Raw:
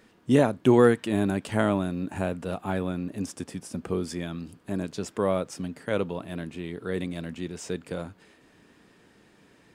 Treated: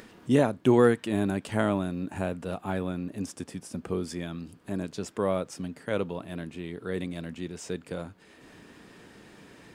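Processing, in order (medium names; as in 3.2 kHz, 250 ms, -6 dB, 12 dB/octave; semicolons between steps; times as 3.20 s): upward compressor, threshold -39 dBFS; trim -2 dB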